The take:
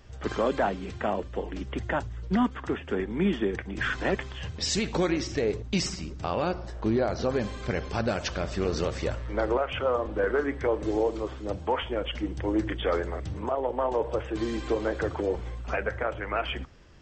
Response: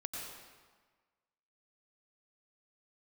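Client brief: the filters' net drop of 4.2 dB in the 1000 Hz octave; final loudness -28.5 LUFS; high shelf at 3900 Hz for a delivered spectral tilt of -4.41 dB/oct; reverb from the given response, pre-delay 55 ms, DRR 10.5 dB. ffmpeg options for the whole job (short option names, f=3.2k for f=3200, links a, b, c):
-filter_complex "[0:a]equalizer=f=1k:t=o:g=-6.5,highshelf=f=3.9k:g=7.5,asplit=2[a][b];[1:a]atrim=start_sample=2205,adelay=55[c];[b][c]afir=irnorm=-1:irlink=0,volume=-10.5dB[d];[a][d]amix=inputs=2:normalize=0,volume=1dB"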